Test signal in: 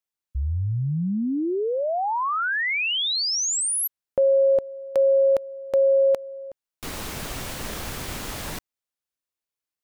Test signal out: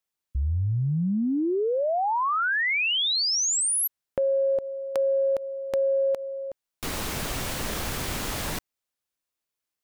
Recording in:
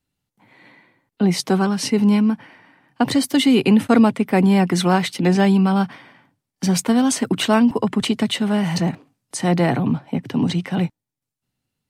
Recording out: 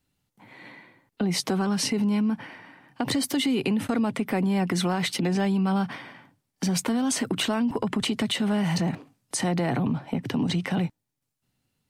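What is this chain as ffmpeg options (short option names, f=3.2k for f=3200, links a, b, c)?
-af "acompressor=threshold=-25dB:ratio=6:attack=3.2:release=74:knee=6:detection=rms,volume=3dB"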